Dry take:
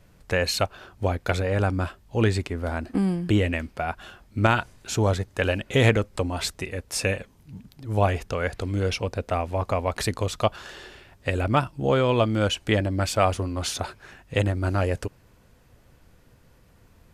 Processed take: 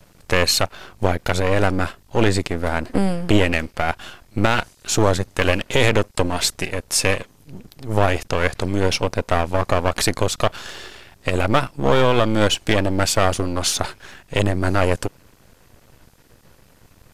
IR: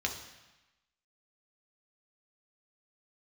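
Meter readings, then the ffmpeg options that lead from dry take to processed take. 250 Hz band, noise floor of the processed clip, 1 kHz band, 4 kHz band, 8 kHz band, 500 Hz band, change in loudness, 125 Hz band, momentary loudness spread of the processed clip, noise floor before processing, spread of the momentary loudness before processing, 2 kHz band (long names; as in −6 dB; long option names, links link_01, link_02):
+4.5 dB, −54 dBFS, +5.5 dB, +8.0 dB, +10.0 dB, +5.0 dB, +5.0 dB, +2.0 dB, 9 LU, −57 dBFS, 10 LU, +6.0 dB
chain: -filter_complex "[0:a]lowshelf=frequency=130:gain=-4.5,acrossover=split=3500[link_01][link_02];[link_01]aeval=exprs='max(val(0),0)':channel_layout=same[link_03];[link_03][link_02]amix=inputs=2:normalize=0,alimiter=level_in=11dB:limit=-1dB:release=50:level=0:latency=1,volume=-1dB"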